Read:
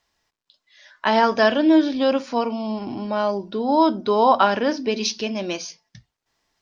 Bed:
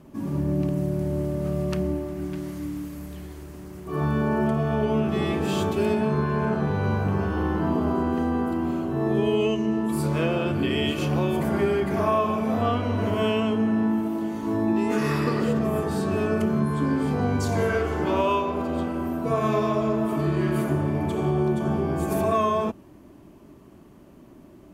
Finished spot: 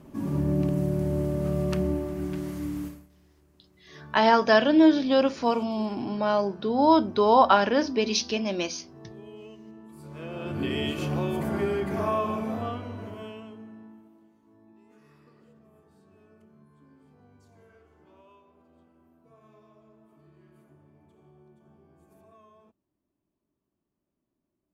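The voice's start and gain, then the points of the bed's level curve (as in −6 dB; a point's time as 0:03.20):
3.10 s, −2.0 dB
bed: 0:02.87 −0.5 dB
0:03.09 −22.5 dB
0:09.96 −22.5 dB
0:10.63 −4.5 dB
0:12.36 −4.5 dB
0:14.47 −34 dB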